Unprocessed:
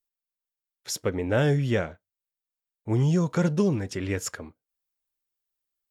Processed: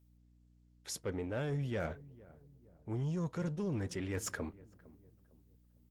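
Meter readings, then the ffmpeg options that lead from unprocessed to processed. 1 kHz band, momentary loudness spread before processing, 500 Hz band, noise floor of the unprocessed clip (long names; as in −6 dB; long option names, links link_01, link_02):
−11.5 dB, 14 LU, −12.5 dB, below −85 dBFS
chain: -filter_complex "[0:a]areverse,acompressor=threshold=-35dB:ratio=8,areverse,aeval=exprs='0.0501*(cos(1*acos(clip(val(0)/0.0501,-1,1)))-cos(1*PI/2))+0.00355*(cos(5*acos(clip(val(0)/0.0501,-1,1)))-cos(5*PI/2))':channel_layout=same,aeval=exprs='val(0)+0.000631*(sin(2*PI*60*n/s)+sin(2*PI*2*60*n/s)/2+sin(2*PI*3*60*n/s)/3+sin(2*PI*4*60*n/s)/4+sin(2*PI*5*60*n/s)/5)':channel_layout=same,asplit=2[link_01][link_02];[link_02]adelay=456,lowpass=frequency=860:poles=1,volume=-19dB,asplit=2[link_03][link_04];[link_04]adelay=456,lowpass=frequency=860:poles=1,volume=0.44,asplit=2[link_05][link_06];[link_06]adelay=456,lowpass=frequency=860:poles=1,volume=0.44[link_07];[link_01][link_03][link_05][link_07]amix=inputs=4:normalize=0" -ar 48000 -c:a libopus -b:a 24k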